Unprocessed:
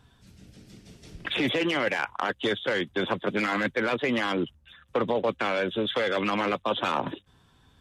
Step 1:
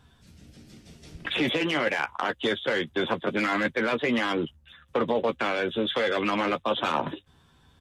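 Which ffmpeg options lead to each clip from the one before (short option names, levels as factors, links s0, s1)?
-filter_complex "[0:a]asplit=2[s0][s1];[s1]adelay=13,volume=0.398[s2];[s0][s2]amix=inputs=2:normalize=0"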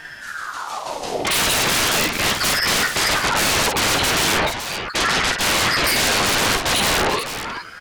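-af "aeval=exprs='0.237*sin(PI/2*10*val(0)/0.237)':c=same,aecho=1:1:50|433:0.501|0.376,aeval=exprs='val(0)*sin(2*PI*1100*n/s+1100*0.55/0.37*sin(2*PI*0.37*n/s))':c=same,volume=0.891"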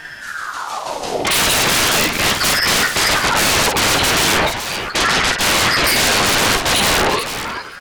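-af "aecho=1:1:525:0.0891,volume=1.5"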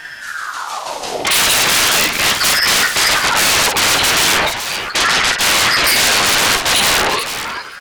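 -af "tiltshelf=f=650:g=-4,volume=0.891"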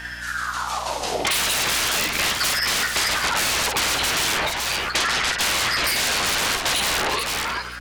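-af "acompressor=threshold=0.158:ratio=6,aeval=exprs='val(0)+0.0112*(sin(2*PI*60*n/s)+sin(2*PI*2*60*n/s)/2+sin(2*PI*3*60*n/s)/3+sin(2*PI*4*60*n/s)/4+sin(2*PI*5*60*n/s)/5)':c=same,volume=0.75"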